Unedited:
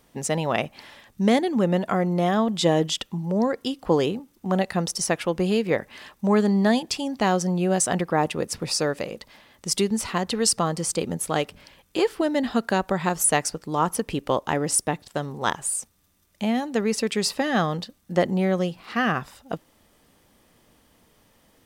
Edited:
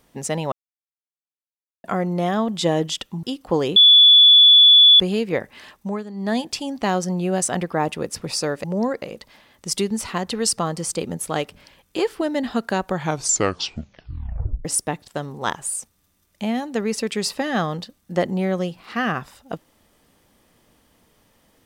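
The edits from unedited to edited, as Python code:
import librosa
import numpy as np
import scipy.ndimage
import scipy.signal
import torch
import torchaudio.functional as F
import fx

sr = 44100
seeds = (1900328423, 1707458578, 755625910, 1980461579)

y = fx.edit(x, sr, fx.silence(start_s=0.52, length_s=1.32),
    fx.move(start_s=3.23, length_s=0.38, to_s=9.02),
    fx.bleep(start_s=4.14, length_s=1.24, hz=3440.0, db=-7.0),
    fx.fade_down_up(start_s=6.13, length_s=0.66, db=-14.5, fade_s=0.28),
    fx.tape_stop(start_s=12.87, length_s=1.78), tone=tone)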